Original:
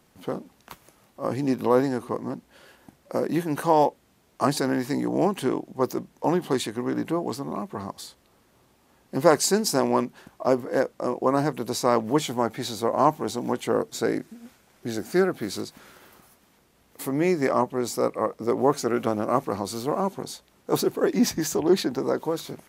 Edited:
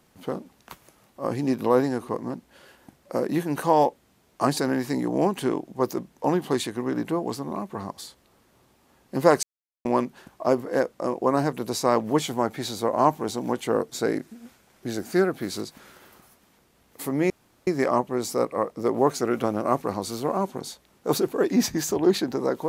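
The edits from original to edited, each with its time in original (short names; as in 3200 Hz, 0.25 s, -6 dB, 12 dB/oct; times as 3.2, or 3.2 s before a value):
9.43–9.85 mute
17.3 insert room tone 0.37 s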